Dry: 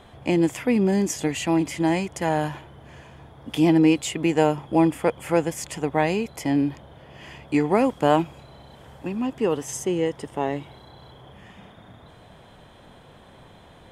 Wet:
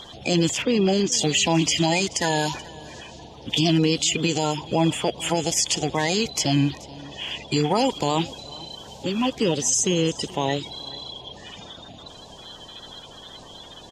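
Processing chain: coarse spectral quantiser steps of 30 dB; high-order bell 4.5 kHz +15 dB; peak limiter -15 dBFS, peak gain reduction 11 dB; 0.62–1.12 s: distance through air 150 m; delay 430 ms -21 dB; trim +3.5 dB

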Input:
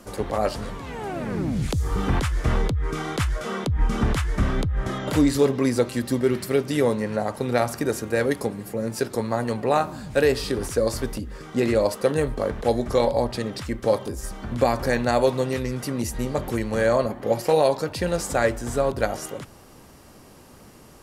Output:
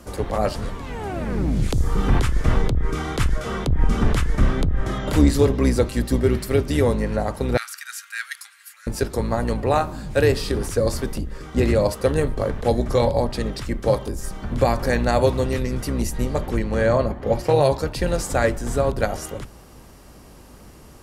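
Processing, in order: octave divider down 2 oct, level +2 dB; 7.57–8.87 s: elliptic high-pass 1.4 kHz, stop band 70 dB; 16.46–17.61 s: treble shelf 7.6 kHz -11 dB; trim +1 dB

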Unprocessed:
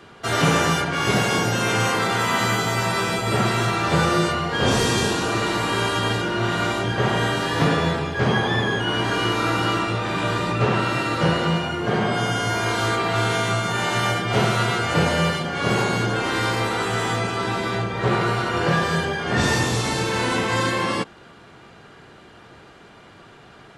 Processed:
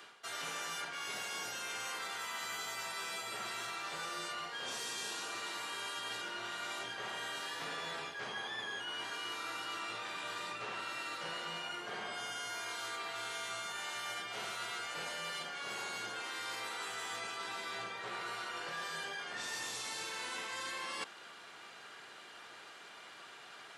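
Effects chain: high-pass 1 kHz 6 dB/octave; tilt EQ +1.5 dB/octave; reverse; compression 6:1, threshold -37 dBFS, peak gain reduction 17 dB; reverse; trim -3 dB

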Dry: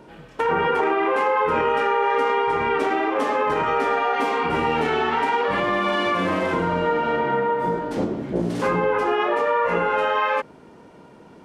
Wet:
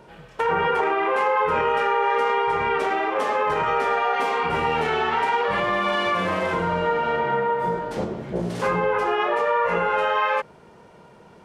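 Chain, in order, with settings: peaking EQ 280 Hz -12 dB 0.49 oct

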